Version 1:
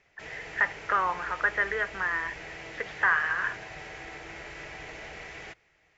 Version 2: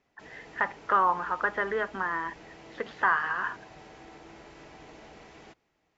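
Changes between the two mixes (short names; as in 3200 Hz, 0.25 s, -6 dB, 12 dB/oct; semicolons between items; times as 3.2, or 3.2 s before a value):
background -8.5 dB; master: add ten-band EQ 250 Hz +12 dB, 1000 Hz +6 dB, 2000 Hz -8 dB, 4000 Hz +3 dB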